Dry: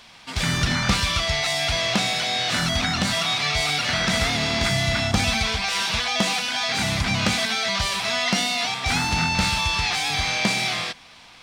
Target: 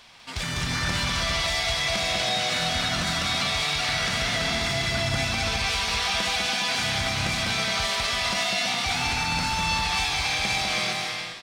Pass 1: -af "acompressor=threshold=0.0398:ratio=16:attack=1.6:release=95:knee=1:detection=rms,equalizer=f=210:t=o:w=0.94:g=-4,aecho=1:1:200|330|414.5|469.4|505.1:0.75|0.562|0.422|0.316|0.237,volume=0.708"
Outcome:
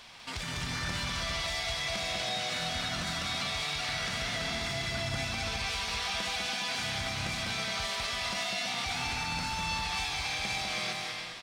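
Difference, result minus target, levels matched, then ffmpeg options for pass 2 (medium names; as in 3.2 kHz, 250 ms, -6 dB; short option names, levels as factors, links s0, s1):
compression: peak gain reduction +8 dB
-af "acompressor=threshold=0.106:ratio=16:attack=1.6:release=95:knee=1:detection=rms,equalizer=f=210:t=o:w=0.94:g=-4,aecho=1:1:200|330|414.5|469.4|505.1:0.75|0.562|0.422|0.316|0.237,volume=0.708"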